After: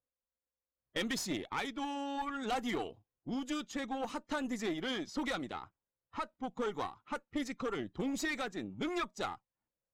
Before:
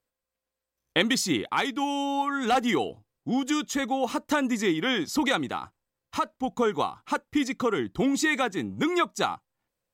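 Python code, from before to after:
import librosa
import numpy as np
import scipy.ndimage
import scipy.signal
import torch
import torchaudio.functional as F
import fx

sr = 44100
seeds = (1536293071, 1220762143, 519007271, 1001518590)

y = fx.spec_quant(x, sr, step_db=15)
y = fx.env_lowpass(y, sr, base_hz=1500.0, full_db=-22.0)
y = fx.tube_stage(y, sr, drive_db=21.0, bias=0.6)
y = F.gain(torch.from_numpy(y), -7.0).numpy()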